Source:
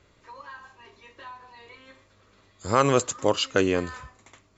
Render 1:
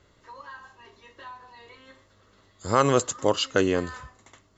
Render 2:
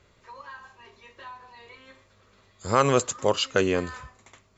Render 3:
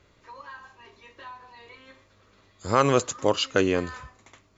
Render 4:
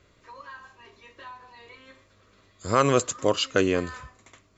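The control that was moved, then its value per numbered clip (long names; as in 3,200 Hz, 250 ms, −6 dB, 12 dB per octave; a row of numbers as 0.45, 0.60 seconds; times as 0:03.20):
notch filter, centre frequency: 2,400, 300, 7,700, 850 Hertz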